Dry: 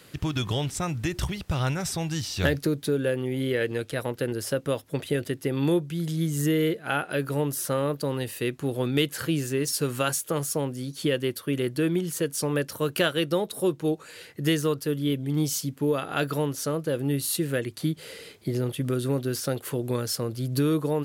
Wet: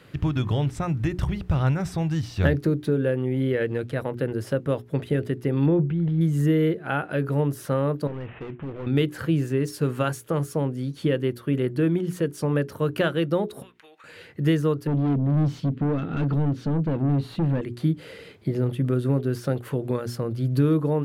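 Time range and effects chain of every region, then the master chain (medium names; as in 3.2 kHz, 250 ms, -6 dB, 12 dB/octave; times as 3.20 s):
5.66–6.21 s: transient shaper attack +3 dB, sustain +7 dB + distance through air 450 m
8.07–8.87 s: CVSD coder 16 kbps + compression 2:1, threshold -32 dBFS + overload inside the chain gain 33 dB
13.62–14.04 s: high-pass 1.2 kHz + peaking EQ 2.1 kHz +10.5 dB 1.4 oct + compression 16:1, threshold -47 dBFS
14.87–17.61 s: FFT filter 220 Hz 0 dB, 810 Hz -27 dB, 3.8 kHz -13 dB, 5.7 kHz -21 dB, 9.9 kHz -25 dB + overdrive pedal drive 29 dB, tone 1.9 kHz, clips at -19 dBFS
whole clip: tone controls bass +5 dB, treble -14 dB; hum notches 60/120/180/240/300/360/420 Hz; dynamic bell 3.1 kHz, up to -4 dB, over -45 dBFS, Q 0.78; trim +1.5 dB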